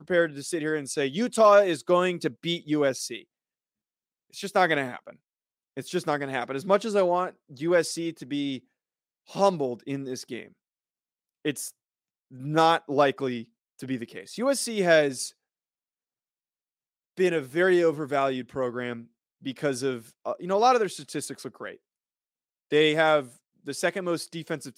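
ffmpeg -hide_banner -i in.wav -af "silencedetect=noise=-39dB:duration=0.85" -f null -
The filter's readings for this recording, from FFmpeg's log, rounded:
silence_start: 3.22
silence_end: 4.34 | silence_duration: 1.13
silence_start: 10.46
silence_end: 11.45 | silence_duration: 0.99
silence_start: 15.29
silence_end: 17.17 | silence_duration: 1.88
silence_start: 21.74
silence_end: 22.72 | silence_duration: 0.98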